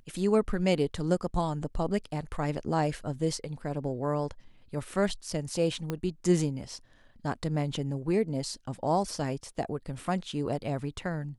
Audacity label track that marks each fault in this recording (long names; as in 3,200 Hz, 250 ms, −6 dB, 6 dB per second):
5.900000	5.900000	click −18 dBFS